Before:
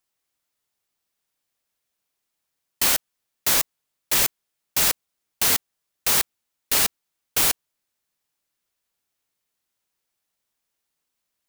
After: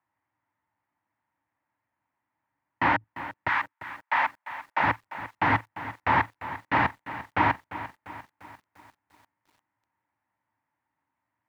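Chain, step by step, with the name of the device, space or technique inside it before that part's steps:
0:03.47–0:04.82: high-pass filter 1,100 Hz → 430 Hz 24 dB per octave
parametric band 940 Hz +3 dB 0.33 octaves
sub-octave bass pedal (sub-octave generator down 2 octaves, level −4 dB; loudspeaker in its box 75–2,000 Hz, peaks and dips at 110 Hz +10 dB, 290 Hz +9 dB, 430 Hz −10 dB, 910 Hz +10 dB, 1,900 Hz +6 dB)
feedback echo at a low word length 347 ms, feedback 55%, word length 9 bits, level −13.5 dB
level +2.5 dB

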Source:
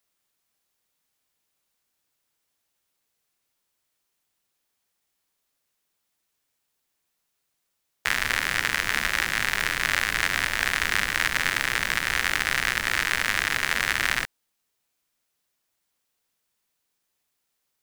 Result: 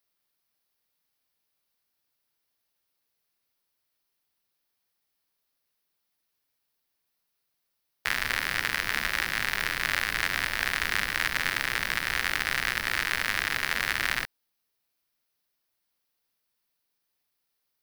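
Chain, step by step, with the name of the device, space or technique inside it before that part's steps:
exciter from parts (in parallel at −4.5 dB: high-pass filter 3,900 Hz 24 dB per octave + soft clipping −22 dBFS, distortion −10 dB + high-pass filter 4,800 Hz 24 dB per octave)
on the sum: level −3.5 dB

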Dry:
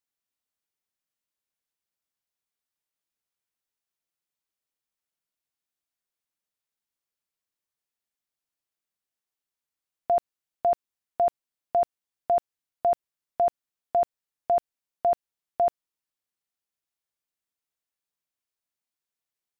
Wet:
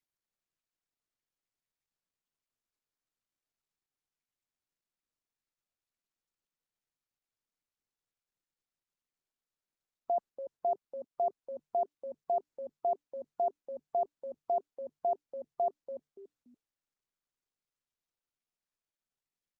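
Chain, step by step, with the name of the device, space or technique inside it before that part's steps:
0:10.17–0:11.24: high-pass filter 94 Hz 12 dB per octave
echo with shifted repeats 287 ms, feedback 31%, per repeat −150 Hz, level −11 dB
noise-suppressed video call (high-pass filter 170 Hz 12 dB per octave; gate on every frequency bin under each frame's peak −30 dB strong; level −8 dB; Opus 20 kbit/s 48,000 Hz)

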